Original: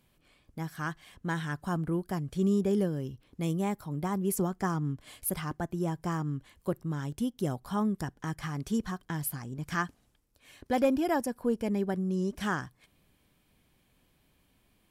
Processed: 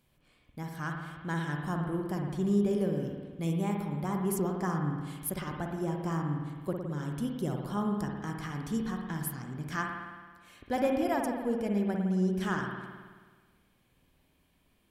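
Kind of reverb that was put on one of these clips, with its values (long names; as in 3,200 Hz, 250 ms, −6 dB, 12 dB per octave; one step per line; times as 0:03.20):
spring reverb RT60 1.5 s, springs 54 ms, chirp 70 ms, DRR 1.5 dB
level −3 dB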